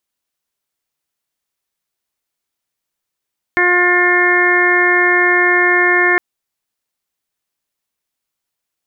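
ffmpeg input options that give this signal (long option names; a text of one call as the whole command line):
ffmpeg -f lavfi -i "aevalsrc='0.15*sin(2*PI*356*t)+0.0841*sin(2*PI*712*t)+0.0944*sin(2*PI*1068*t)+0.0841*sin(2*PI*1424*t)+0.237*sin(2*PI*1780*t)+0.15*sin(2*PI*2136*t)':duration=2.61:sample_rate=44100" out.wav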